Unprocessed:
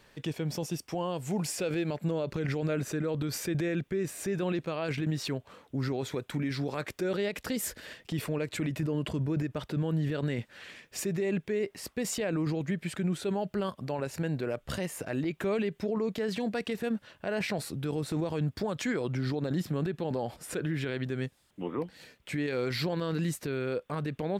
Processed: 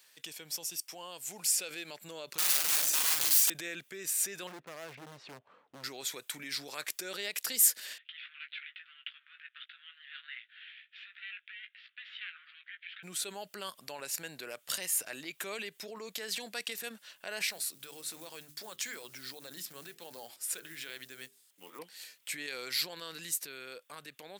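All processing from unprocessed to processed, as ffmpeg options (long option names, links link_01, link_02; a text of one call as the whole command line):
ffmpeg -i in.wav -filter_complex "[0:a]asettb=1/sr,asplit=3[link_01][link_02][link_03];[link_01]atrim=end=2.384[link_04];[link_02]atrim=start=2.38:end=3.5,asetpts=PTS-STARTPTS,afade=type=in:duration=0.004:curve=qsin,afade=type=out:start_time=1.116:duration=0.004:curve=qsin,bandreject=frequency=50:width_type=h:width=6,bandreject=frequency=100:width_type=h:width=6,bandreject=frequency=150:width_type=h:width=6,bandreject=frequency=200:width_type=h:width=6,bandreject=frequency=250:width_type=h:width=6,bandreject=frequency=300:width_type=h:width=6,bandreject=frequency=350:width_type=h:width=6,bandreject=frequency=400:width_type=h:width=6,aeval=exprs='(mod(31.6*val(0)+1,2)-1)/31.6':channel_layout=same,asplit=2[link_05][link_06];[link_06]adelay=43,volume=-2.5dB[link_07];[link_05][link_07]amix=inputs=2:normalize=0,atrim=end_sample=49392[link_08];[link_03]atrim=start=3.496[link_09];[link_04][link_08]acrossfade=duration=0.004:curve1=hsin:curve2=qsin[link_10];[link_10][link_09]acrossfade=duration=0.004:curve1=qsin:curve2=hsin,asettb=1/sr,asplit=3[link_11][link_12][link_13];[link_11]atrim=end=4.474[link_14];[link_12]atrim=start=4.47:end=5.84,asetpts=PTS-STARTPTS,afade=type=in:duration=0.004:curve=qsin,afade=type=out:start_time=1.366:duration=0.004:curve=qsin,lowpass=1200,lowshelf=frequency=190:gain=8.5,asoftclip=type=hard:threshold=-30dB[link_15];[link_13]atrim=start=5.836[link_16];[link_14][link_15]acrossfade=duration=0.004:curve1=hsin:curve2=qsin[link_17];[link_17][link_16]acrossfade=duration=0.004:curve1=qsin:curve2=hsin,asettb=1/sr,asplit=3[link_18][link_19][link_20];[link_18]atrim=end=7.984[link_21];[link_19]atrim=start=7.98:end=13.03,asetpts=PTS-STARTPTS,afade=type=in:duration=0.004:curve=qsin,afade=type=out:start_time=5.046:duration=0.004:curve=qsin,aeval=exprs='if(lt(val(0),0),0.251*val(0),val(0))':channel_layout=same,asuperpass=centerf=2200:order=12:qfactor=0.99,asplit=2[link_22][link_23];[link_23]adelay=17,volume=-7.5dB[link_24];[link_22][link_24]amix=inputs=2:normalize=0,atrim=end_sample=222705[link_25];[link_20]atrim=start=13.026[link_26];[link_21][link_25]acrossfade=duration=0.004:curve1=hsin:curve2=qsin[link_27];[link_27][link_26]acrossfade=duration=0.004:curve1=qsin:curve2=hsin,asettb=1/sr,asplit=3[link_28][link_29][link_30];[link_28]atrim=end=17.494[link_31];[link_29]atrim=start=17.49:end=21.79,asetpts=PTS-STARTPTS,afade=type=in:duration=0.004:curve=qsin,afade=type=out:start_time=4.296:duration=0.004:curve=qsin,bandreject=frequency=50:width_type=h:width=6,bandreject=frequency=100:width_type=h:width=6,bandreject=frequency=150:width_type=h:width=6,bandreject=frequency=200:width_type=h:width=6,bandreject=frequency=250:width_type=h:width=6,bandreject=frequency=300:width_type=h:width=6,bandreject=frequency=350:width_type=h:width=6,bandreject=frequency=400:width_type=h:width=6,flanger=delay=0.4:depth=4.9:regen=-88:speed=1.1:shape=sinusoidal,acrusher=bits=8:mode=log:mix=0:aa=0.000001[link_32];[link_30]atrim=start=21.786[link_33];[link_31][link_32]acrossfade=duration=0.004:curve1=hsin:curve2=qsin[link_34];[link_34][link_33]acrossfade=duration=0.004:curve1=qsin:curve2=hsin,highpass=110,aderivative,dynaudnorm=framelen=350:gausssize=11:maxgain=4dB,volume=6.5dB" out.wav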